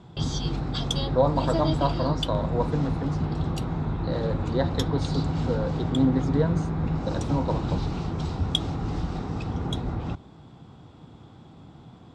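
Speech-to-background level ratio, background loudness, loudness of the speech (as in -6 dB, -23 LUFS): 0.0 dB, -28.5 LUFS, -28.5 LUFS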